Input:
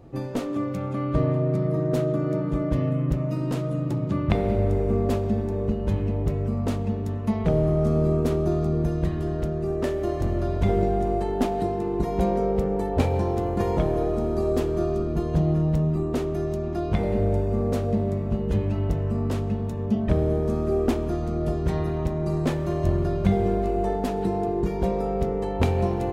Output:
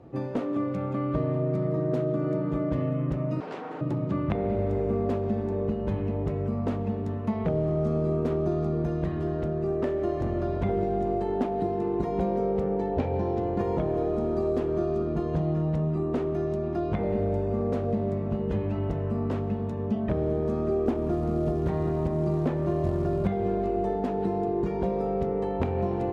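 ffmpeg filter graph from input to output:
-filter_complex "[0:a]asettb=1/sr,asplit=3[a][b][c];[a]atrim=end=3.404[d];[b]atrim=start=3.4:end=3.81,asetpts=PTS-STARTPTS,afade=t=in:d=0.004:c=qsin,afade=t=out:st=0.406:d=0.004:c=qsin,tiltshelf=f=1.1k:g=-5.5,aeval=exprs='abs(val(0))':c=same,highpass=200,lowpass=6.4k[e];[c]atrim=start=3.806[f];[d][e]acrossfade=d=0.004:c1=hsin:c2=qsin[g];[g][f]acrossfade=d=0.004:c1=qsin:c2=hsin,asettb=1/sr,asplit=3[h][i][j];[h]atrim=end=12.754[k];[i]atrim=start=12.75:end=13.59,asetpts=PTS-STARTPTS,afade=t=in:d=0.004:c=qsin,afade=t=out:st=0.836:d=0.004:c=qsin,lowpass=f=6.7k:w=0.5412,lowpass=f=6.7k:w=1.3066,equalizer=f=1.2k:w=3.8:g=-5[l];[j]atrim=start=13.586[m];[k][l]acrossfade=d=0.004:c1=hsin:c2=qsin[n];[n][m]acrossfade=d=0.004:c1=qsin:c2=hsin,asettb=1/sr,asplit=3[o][p][q];[o]atrim=end=20.864[r];[p]atrim=start=20.86:end=23.28,asetpts=PTS-STARTPTS,afade=t=in:d=0.004:c=qsin,afade=t=out:st=2.416:d=0.004:c=qsin,tiltshelf=f=1.2k:g=4,acrusher=bits=8:mode=log:mix=0:aa=0.000001[s];[q]atrim=start=23.276[t];[r][s]acrossfade=d=0.004:c1=hsin:c2=qsin[u];[u][t]acrossfade=d=0.004:c1=qsin:c2=hsin,highpass=f=130:p=1,aemphasis=mode=reproduction:type=75fm,acrossover=split=590|2700[v][w][x];[v]acompressor=threshold=-24dB:ratio=4[y];[w]acompressor=threshold=-35dB:ratio=4[z];[x]acompressor=threshold=-59dB:ratio=4[aa];[y][z][aa]amix=inputs=3:normalize=0"

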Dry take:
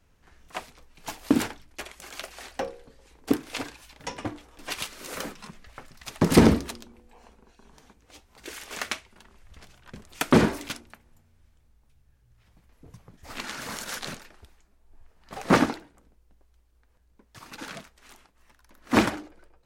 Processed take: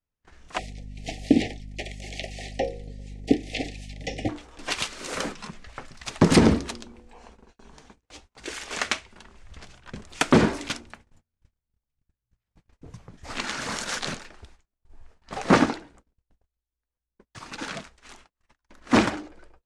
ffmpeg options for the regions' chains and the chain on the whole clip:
-filter_complex "[0:a]asettb=1/sr,asplit=3[a][b][c];[a]atrim=end=0.584[d];[b]atrim=start=0.58:end=4.29,asetpts=PTS-STARTPTS,afade=t=in:d=0.004:c=qsin,afade=t=out:st=3.706:d=0.004:c=qsin,acrossover=split=4800[e][f];[f]acompressor=threshold=-49dB:ratio=4:attack=1:release=60[g];[e][g]amix=inputs=2:normalize=0,aeval=exprs='val(0)+0.00708*(sin(2*PI*50*n/s)+sin(2*PI*2*50*n/s)/2+sin(2*PI*3*50*n/s)/3+sin(2*PI*4*50*n/s)/4+sin(2*PI*5*50*n/s)/5)':c=same,asuperstop=centerf=1200:order=20:qfactor=1.2[h];[c]atrim=start=4.286[i];[d][h]acrossfade=d=0.004:c1=hsin:c2=qsin[j];[j][i]acrossfade=d=0.004:c1=qsin:c2=hsin,agate=range=-30dB:threshold=-55dB:ratio=16:detection=peak,lowpass=f=8.8k:w=0.5412,lowpass=f=8.8k:w=1.3066,alimiter=limit=-10dB:level=0:latency=1:release=407,volume=5dB"

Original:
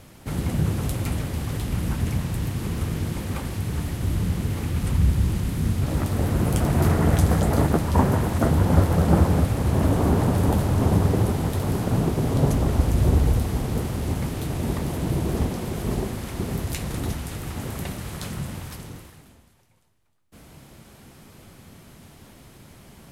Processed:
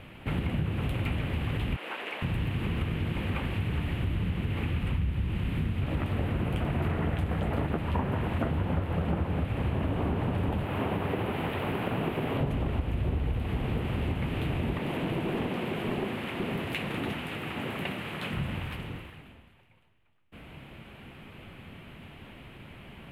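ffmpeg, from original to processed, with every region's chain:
-filter_complex "[0:a]asettb=1/sr,asplit=3[a][b][c];[a]atrim=end=1.764[d];[b]atrim=start=1.76:end=2.22,asetpts=PTS-STARTPTS,afade=t=in:d=0.004:c=qsin,afade=t=out:st=0.456:d=0.004:c=qsin,highpass=f=430:w=0.5412,highpass=f=430:w=1.3066,highshelf=f=8.5k:g=-8[e];[c]atrim=start=2.216[f];[d][e]acrossfade=d=0.004:c1=hsin:c2=qsin[g];[g][f]acrossfade=d=0.004:c1=qsin:c2=hsin,asettb=1/sr,asplit=3[h][i][j];[h]atrim=end=10.654[k];[i]atrim=start=10.65:end=12.41,asetpts=PTS-STARTPTS,afade=t=in:d=0.004:c=qsin,afade=t=out:st=1.756:d=0.004:c=qsin,acrossover=split=3300[l][m];[m]acompressor=threshold=-54dB:ratio=4:attack=1:release=60[n];[l][n]amix=inputs=2:normalize=0,aemphasis=mode=production:type=bsi[o];[j]atrim=start=12.406[p];[k][o]acrossfade=d=0.004:c1=hsin:c2=qsin[q];[q][p]acrossfade=d=0.004:c1=qsin:c2=hsin,asettb=1/sr,asplit=3[r][s][t];[r]atrim=end=14.784[u];[s]atrim=start=14.78:end=18.33,asetpts=PTS-STARTPTS,afade=t=in:d=0.004:c=qsin,afade=t=out:st=3.546:d=0.004:c=qsin,highpass=180,aeval=exprs='clip(val(0),-1,0.0473)':c=same[v];[t]atrim=start=18.326[w];[u][v]acrossfade=d=0.004:c1=hsin:c2=qsin[x];[x][w]acrossfade=d=0.004:c1=qsin:c2=hsin,highshelf=f=4k:t=q:w=3:g=-13.5,acompressor=threshold=-26dB:ratio=6"

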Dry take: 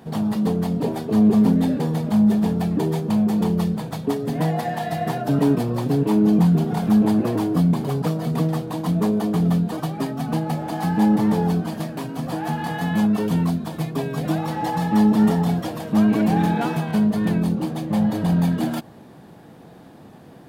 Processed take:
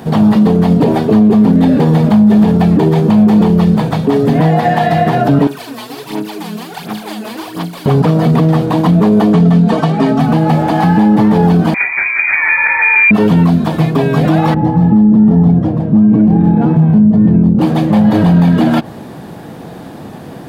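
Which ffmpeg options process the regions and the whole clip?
-filter_complex "[0:a]asettb=1/sr,asplit=3[a][b][c];[a]atrim=end=5.474[d];[b]atrim=start=5.47:end=7.86,asetpts=PTS-STARTPTS,afade=t=in:d=0.004:c=qsin,afade=t=out:st=2.386:d=0.004:c=qsin,aderivative,aecho=1:1:41|202:0.631|0.668,atrim=end_sample=105399,aphaser=in_gain=1:out_gain=1:delay=4.7:decay=0.67:speed=1.4:type=sinusoidal[e];[c]atrim=start=7.856[f];[d][e]acrossfade=d=0.004:c1=hsin:c2=qsin[g];[g][f]acrossfade=d=0.004:c1=qsin:c2=hsin,asettb=1/sr,asplit=3[h][i][j];[h]atrim=end=9.334[k];[i]atrim=start=9.33:end=10.2,asetpts=PTS-STARTPTS,afade=t=in:d=0.004:c=qsin,afade=t=out:st=0.866:d=0.004:c=qsin,lowpass=8.3k,aecho=1:1:4.5:0.55,atrim=end_sample=38367[l];[j]atrim=start=10.196[m];[k][l]acrossfade=d=0.004:c1=hsin:c2=qsin[n];[n][m]acrossfade=d=0.004:c1=qsin:c2=hsin,asettb=1/sr,asplit=3[o][p][q];[o]atrim=end=11.744[r];[p]atrim=start=11.74:end=13.11,asetpts=PTS-STARTPTS,afade=t=in:d=0.004:c=qsin,afade=t=out:st=1.366:d=0.004:c=qsin,bandreject=f=80.43:t=h:w=4,bandreject=f=160.86:t=h:w=4,bandreject=f=241.29:t=h:w=4,bandreject=f=321.72:t=h:w=4,bandreject=f=402.15:t=h:w=4,bandreject=f=482.58:t=h:w=4,bandreject=f=563.01:t=h:w=4,bandreject=f=643.44:t=h:w=4,bandreject=f=723.87:t=h:w=4,bandreject=f=804.3:t=h:w=4,bandreject=f=884.73:t=h:w=4,bandreject=f=965.16:t=h:w=4,bandreject=f=1.04559k:t=h:w=4,bandreject=f=1.12602k:t=h:w=4,bandreject=f=1.20645k:t=h:w=4,bandreject=f=1.28688k:t=h:w=4,bandreject=f=1.36731k:t=h:w=4,bandreject=f=1.44774k:t=h:w=4,bandreject=f=1.52817k:t=h:w=4,bandreject=f=1.6086k:t=h:w=4,bandreject=f=1.68903k:t=h:w=4,bandreject=f=1.76946k:t=h:w=4,bandreject=f=1.84989k:t=h:w=4,bandreject=f=1.93032k:t=h:w=4,bandreject=f=2.01075k:t=h:w=4,bandreject=f=2.09118k:t=h:w=4,bandreject=f=2.17161k:t=h:w=4,bandreject=f=2.25204k:t=h:w=4,bandreject=f=2.33247k:t=h:w=4,bandreject=f=2.4129k:t=h:w=4,bandreject=f=2.49333k:t=h:w=4,bandreject=f=2.57376k:t=h:w=4,bandreject=f=2.65419k:t=h:w=4,bandreject=f=2.73462k:t=h:w=4,lowpass=f=2.2k:t=q:w=0.5098,lowpass=f=2.2k:t=q:w=0.6013,lowpass=f=2.2k:t=q:w=0.9,lowpass=f=2.2k:t=q:w=2.563,afreqshift=-2600[s];[q]atrim=start=13.106[t];[r][s]acrossfade=d=0.004:c1=hsin:c2=qsin[u];[u][t]acrossfade=d=0.004:c1=qsin:c2=hsin,asettb=1/sr,asplit=3[v][w][x];[v]atrim=end=14.544[y];[w]atrim=start=14.54:end=17.59,asetpts=PTS-STARTPTS,afade=t=in:d=0.004:c=qsin,afade=t=out:st=3.046:d=0.004:c=qsin,bandpass=f=140:t=q:w=0.6,lowshelf=f=180:g=6,asplit=2[z][aa];[aa]adelay=32,volume=-11.5dB[ab];[z][ab]amix=inputs=2:normalize=0,atrim=end_sample=134505[ac];[x]atrim=start=17.586[ad];[y][ac]acrossfade=d=0.004:c1=hsin:c2=qsin[ae];[ae][ad]acrossfade=d=0.004:c1=qsin:c2=hsin,acrossover=split=4000[af][ag];[ag]acompressor=threshold=-56dB:ratio=4:attack=1:release=60[ah];[af][ah]amix=inputs=2:normalize=0,alimiter=level_in=16.5dB:limit=-1dB:release=50:level=0:latency=1,volume=-1dB"

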